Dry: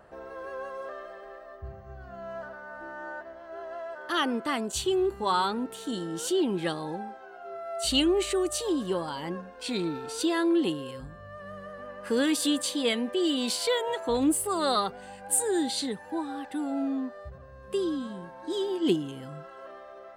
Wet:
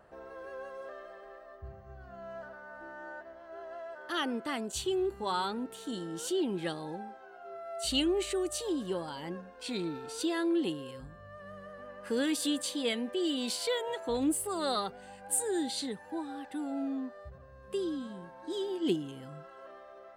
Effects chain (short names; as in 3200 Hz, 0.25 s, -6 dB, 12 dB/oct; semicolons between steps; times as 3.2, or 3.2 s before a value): dynamic EQ 1100 Hz, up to -4 dB, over -47 dBFS, Q 3.6; gain -5 dB